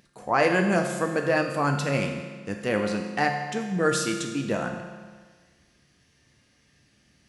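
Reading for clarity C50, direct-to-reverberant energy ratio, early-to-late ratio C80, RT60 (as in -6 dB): 4.5 dB, 2.0 dB, 6.0 dB, 1.5 s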